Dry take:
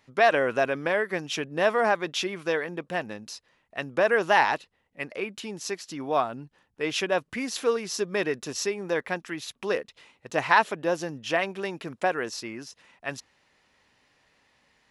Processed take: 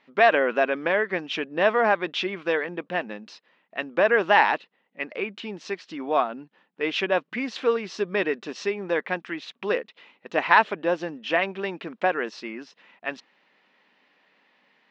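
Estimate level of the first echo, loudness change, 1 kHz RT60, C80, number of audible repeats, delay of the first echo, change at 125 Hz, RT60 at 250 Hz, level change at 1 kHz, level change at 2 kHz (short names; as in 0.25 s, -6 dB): none, +2.0 dB, none, none, none, none, -2.5 dB, none, +2.0 dB, +3.0 dB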